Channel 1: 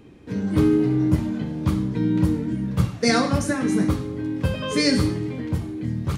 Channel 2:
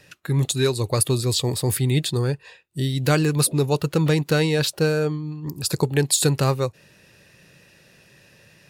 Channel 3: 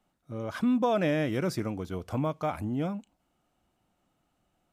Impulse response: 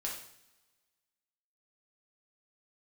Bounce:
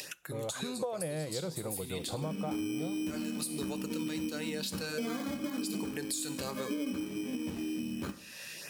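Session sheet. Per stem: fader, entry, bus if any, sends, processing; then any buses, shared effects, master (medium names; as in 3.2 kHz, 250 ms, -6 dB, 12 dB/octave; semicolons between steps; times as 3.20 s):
-9.5 dB, 1.95 s, bus A, send -7 dB, elliptic low-pass 1.6 kHz; resonant low shelf 170 Hz -9.5 dB, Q 3; sample-and-hold 16×
-10.5 dB, 0.00 s, bus A, send -14 dB, high-pass 260 Hz 12 dB/octave; treble shelf 2.3 kHz +11 dB; LFO notch sine 1.4 Hz 340–5200 Hz; auto duck -21 dB, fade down 0.25 s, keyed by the third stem
-4.5 dB, 0.00 s, no bus, no send, graphic EQ with 31 bands 160 Hz +9 dB, 250 Hz -10 dB, 500 Hz +11 dB, 800 Hz +6 dB
bus A: 0.0 dB, upward compressor, threshold -31 dBFS; peak limiter -21 dBFS, peak gain reduction 13.5 dB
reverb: on, pre-delay 3 ms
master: compression, threshold -33 dBFS, peak gain reduction 14 dB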